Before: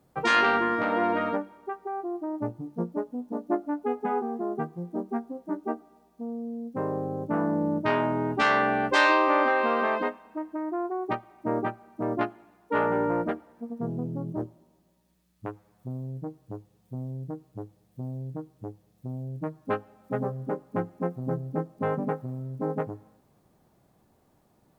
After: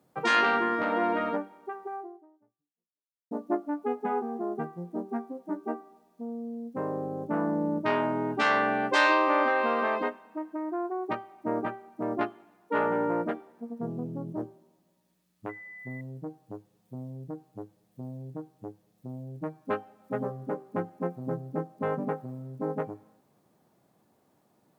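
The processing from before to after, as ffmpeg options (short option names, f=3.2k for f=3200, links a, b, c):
-filter_complex "[0:a]asettb=1/sr,asplit=3[a][b][c];[a]atrim=end=15.494[d];[b]atrim=start=15.49:end=16.01,asetpts=PTS-STARTPTS,afade=t=in:d=0.004:c=qsin,afade=t=out:st=0.516:d=0.004:c=qsin,aeval=exprs='val(0)+0.00891*sin(2*PI*2000*n/s)':c=same[e];[c]atrim=start=16.006[f];[d][e]acrossfade=d=0.004:c1=hsin:c2=qsin[g];[g][f]acrossfade=d=0.004:c1=qsin:c2=hsin,asplit=2[h][i];[h]atrim=end=3.31,asetpts=PTS-STARTPTS,afade=t=out:st=1.94:d=1.37:c=exp[j];[i]atrim=start=3.31,asetpts=PTS-STARTPTS,afade=t=in:d=0.004:c=hsin[k];[j][k]concat=n=2:v=0:a=1,highpass=150,bandreject=f=389.6:t=h:w=4,bandreject=f=779.2:t=h:w=4,bandreject=f=1.1688k:t=h:w=4,bandreject=f=1.5584k:t=h:w=4,bandreject=f=1.948k:t=h:w=4,bandreject=f=2.3376k:t=h:w=4,bandreject=f=2.7272k:t=h:w=4,bandreject=f=3.1168k:t=h:w=4,bandreject=f=3.5064k:t=h:w=4,bandreject=f=3.896k:t=h:w=4,bandreject=f=4.2856k:t=h:w=4,bandreject=f=4.6752k:t=h:w=4,bandreject=f=5.0648k:t=h:w=4,bandreject=f=5.4544k:t=h:w=4,bandreject=f=5.844k:t=h:w=4,bandreject=f=6.2336k:t=h:w=4,bandreject=f=6.6232k:t=h:w=4,bandreject=f=7.0128k:t=h:w=4,bandreject=f=7.4024k:t=h:w=4,bandreject=f=7.792k:t=h:w=4,bandreject=f=8.1816k:t=h:w=4,bandreject=f=8.5712k:t=h:w=4,bandreject=f=8.9608k:t=h:w=4,bandreject=f=9.3504k:t=h:w=4,bandreject=f=9.74k:t=h:w=4,bandreject=f=10.1296k:t=h:w=4,bandreject=f=10.5192k:t=h:w=4,bandreject=f=10.9088k:t=h:w=4,bandreject=f=11.2984k:t=h:w=4,bandreject=f=11.688k:t=h:w=4,bandreject=f=12.0776k:t=h:w=4,bandreject=f=12.4672k:t=h:w=4,bandreject=f=12.8568k:t=h:w=4,bandreject=f=13.2464k:t=h:w=4,bandreject=f=13.636k:t=h:w=4,bandreject=f=14.0256k:t=h:w=4,bandreject=f=14.4152k:t=h:w=4,bandreject=f=14.8048k:t=h:w=4,bandreject=f=15.1944k:t=h:w=4,volume=-1.5dB"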